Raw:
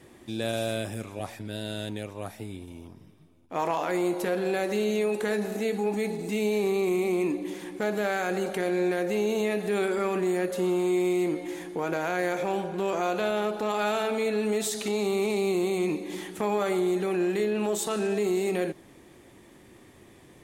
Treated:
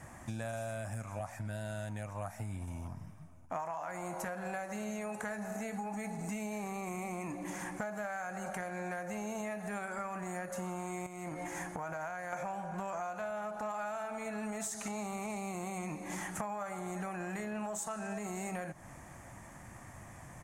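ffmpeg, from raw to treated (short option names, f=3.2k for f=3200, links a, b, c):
-filter_complex "[0:a]asettb=1/sr,asplit=3[a][b][c];[a]atrim=end=11.064[d];[b]atrim=start=11.06:end=12.33,asetpts=PTS-STARTPTS,afade=t=in:d=0.004:c=qsin,afade=t=out:st=1.266:d=0.004:c=qsin,acompressor=threshold=-32dB:ratio=10:attack=3.2:release=140:knee=1:detection=peak[e];[c]atrim=start=12.326[f];[d][e]acrossfade=d=0.004:c1=hsin:c2=qsin[g];[g][f]acrossfade=d=0.004:c1=qsin:c2=hsin,firequalizer=gain_entry='entry(130,0);entry(390,-20);entry(640,0);entry(1500,0);entry(3600,-18);entry(6400,0);entry(14000,-9)':delay=0.05:min_phase=1,acompressor=threshold=-43dB:ratio=12,volume=7dB"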